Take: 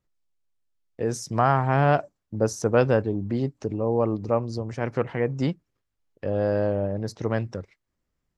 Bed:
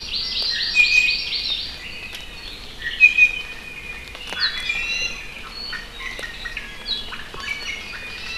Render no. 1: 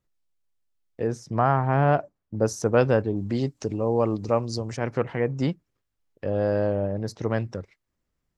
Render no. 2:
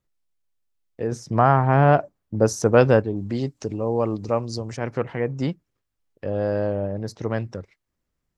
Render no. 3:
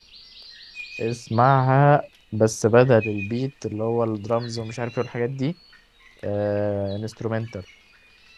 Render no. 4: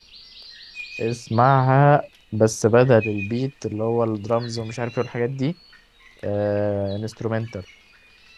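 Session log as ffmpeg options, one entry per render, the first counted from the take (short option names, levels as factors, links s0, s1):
-filter_complex "[0:a]asettb=1/sr,asplit=3[s0][s1][s2];[s0]atrim=end=1.074[s3];[s1]atrim=start=1.07:end=2.35,asetpts=PTS-STARTPTS,afade=t=in:d=0.004:c=qsin,afade=t=out:st=1.276:d=0.004:c=qsin,lowpass=f=1800:p=1[s4];[s2]atrim=start=2.346[s5];[s3][s4]acrossfade=d=0.004:c1=hsin:c2=qsin[s6];[s6][s5]acrossfade=d=0.004:c1=qsin:c2=hsin,asettb=1/sr,asplit=3[s7][s8][s9];[s7]atrim=end=3.164[s10];[s8]atrim=start=3.16:end=4.77,asetpts=PTS-STARTPTS,afade=t=in:d=0.004:c=qsin,afade=t=out:st=1.606:d=0.004:c=qsin,equalizer=f=7700:t=o:w=2.7:g=10[s11];[s9]atrim=start=4.766[s12];[s10][s11]acrossfade=d=0.004:c1=hsin:c2=qsin[s13];[s13][s12]acrossfade=d=0.004:c1=qsin:c2=hsin"
-filter_complex "[0:a]asplit=3[s0][s1][s2];[s0]atrim=end=1.122[s3];[s1]atrim=start=1.118:end=3.002,asetpts=PTS-STARTPTS,volume=1.68[s4];[s2]atrim=start=2.998[s5];[s3][s4]acrossfade=d=0.004:c1=hsin:c2=hsin[s6];[s6][s5]acrossfade=d=0.004:c1=hsin:c2=hsin"
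-filter_complex "[1:a]volume=0.0841[s0];[0:a][s0]amix=inputs=2:normalize=0"
-af "volume=1.19,alimiter=limit=0.708:level=0:latency=1"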